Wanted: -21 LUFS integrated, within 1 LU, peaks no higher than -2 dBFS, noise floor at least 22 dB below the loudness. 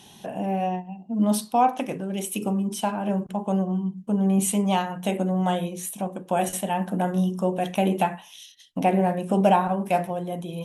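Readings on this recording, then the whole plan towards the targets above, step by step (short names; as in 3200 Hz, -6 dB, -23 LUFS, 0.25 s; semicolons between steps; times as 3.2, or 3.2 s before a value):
loudness -25.0 LUFS; peak -7.5 dBFS; loudness target -21.0 LUFS
-> gain +4 dB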